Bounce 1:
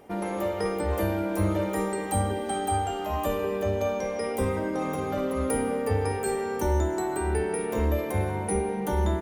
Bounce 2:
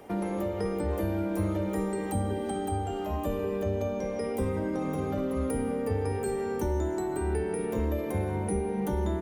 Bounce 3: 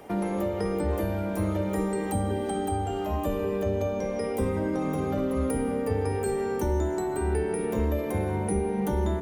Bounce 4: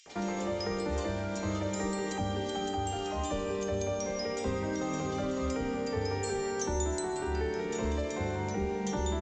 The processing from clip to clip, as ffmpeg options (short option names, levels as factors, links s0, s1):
-filter_complex "[0:a]acrossover=split=170|450[s0][s1][s2];[s0]acompressor=threshold=0.02:ratio=4[s3];[s1]acompressor=threshold=0.02:ratio=4[s4];[s2]acompressor=threshold=0.00794:ratio=4[s5];[s3][s4][s5]amix=inputs=3:normalize=0,volume=1.41"
-af "bandreject=f=46.99:t=h:w=4,bandreject=f=93.98:t=h:w=4,bandreject=f=140.97:t=h:w=4,bandreject=f=187.96:t=h:w=4,bandreject=f=234.95:t=h:w=4,bandreject=f=281.94:t=h:w=4,bandreject=f=328.93:t=h:w=4,bandreject=f=375.92:t=h:w=4,bandreject=f=422.91:t=h:w=4,bandreject=f=469.9:t=h:w=4,bandreject=f=516.89:t=h:w=4,bandreject=f=563.88:t=h:w=4,volume=1.41"
-filter_complex "[0:a]acrossover=split=2700[s0][s1];[s0]adelay=60[s2];[s2][s1]amix=inputs=2:normalize=0,aresample=16000,aresample=44100,crystalizer=i=8.5:c=0,volume=0.473"